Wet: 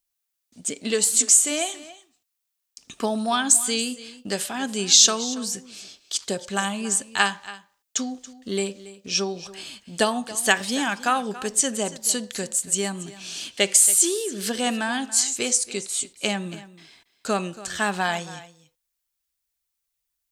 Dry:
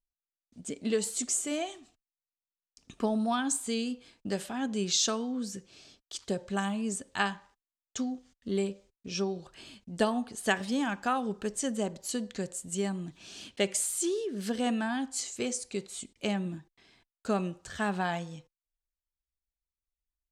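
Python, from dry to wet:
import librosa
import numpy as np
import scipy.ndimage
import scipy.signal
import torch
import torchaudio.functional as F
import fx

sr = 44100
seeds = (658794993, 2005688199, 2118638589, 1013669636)

p1 = fx.tilt_eq(x, sr, slope=2.5)
p2 = p1 + fx.echo_single(p1, sr, ms=280, db=-17.0, dry=0)
y = p2 * librosa.db_to_amplitude(7.5)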